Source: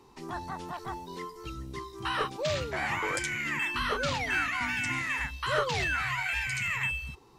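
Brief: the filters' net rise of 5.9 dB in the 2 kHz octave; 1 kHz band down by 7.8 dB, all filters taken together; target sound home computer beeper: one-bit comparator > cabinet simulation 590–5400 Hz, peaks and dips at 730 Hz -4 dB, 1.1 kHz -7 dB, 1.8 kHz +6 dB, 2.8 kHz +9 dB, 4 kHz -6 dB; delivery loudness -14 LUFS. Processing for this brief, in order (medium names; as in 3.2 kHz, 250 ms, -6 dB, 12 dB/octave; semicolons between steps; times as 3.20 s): peaking EQ 1 kHz -7.5 dB; peaking EQ 2 kHz +3.5 dB; one-bit comparator; cabinet simulation 590–5400 Hz, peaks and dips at 730 Hz -4 dB, 1.1 kHz -7 dB, 1.8 kHz +6 dB, 2.8 kHz +9 dB, 4 kHz -6 dB; trim +14.5 dB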